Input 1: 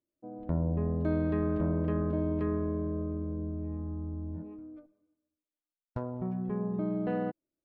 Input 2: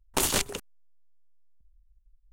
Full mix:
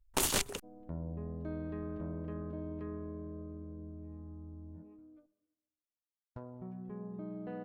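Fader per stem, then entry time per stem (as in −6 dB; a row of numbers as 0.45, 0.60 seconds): −11.0, −5.0 decibels; 0.40, 0.00 seconds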